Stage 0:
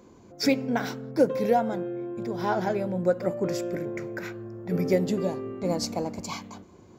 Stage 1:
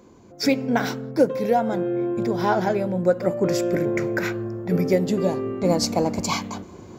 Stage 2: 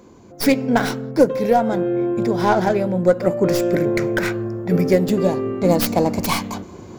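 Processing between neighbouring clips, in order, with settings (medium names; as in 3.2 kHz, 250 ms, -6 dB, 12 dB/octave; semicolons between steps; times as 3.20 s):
gain riding within 5 dB 0.5 s; trim +5.5 dB
tracing distortion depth 0.26 ms; trim +4 dB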